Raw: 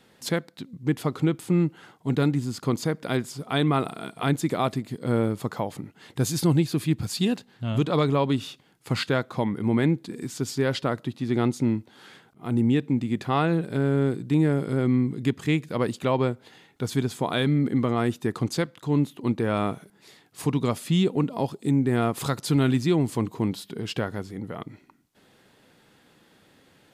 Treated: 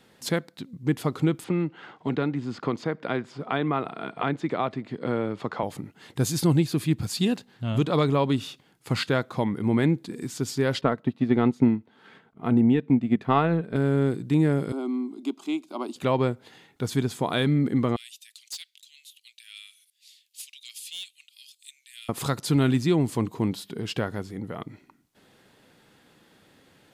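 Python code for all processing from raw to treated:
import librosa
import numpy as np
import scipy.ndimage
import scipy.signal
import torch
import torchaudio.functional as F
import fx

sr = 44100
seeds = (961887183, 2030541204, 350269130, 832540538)

y = fx.chain(x, sr, fx.lowpass(hz=2700.0, slope=12),
    fx.low_shelf(hz=180.0, db=-11.5),
    fx.band_squash(depth_pct=70), at=(1.44, 5.63))
y = fx.chain(y, sr, fx.bass_treble(bass_db=0, treble_db=-15),
    fx.comb(ms=4.5, depth=0.31),
    fx.transient(attack_db=6, sustain_db=-5), at=(10.81, 13.76))
y = fx.chain(y, sr, fx.highpass(hz=280.0, slope=24),
    fx.high_shelf(hz=6900.0, db=-9.5),
    fx.fixed_phaser(hz=480.0, stages=6), at=(14.72, 15.96))
y = fx.chain(y, sr, fx.steep_highpass(hz=2700.0, slope=36),
    fx.clip_hard(threshold_db=-30.0), at=(17.96, 22.09))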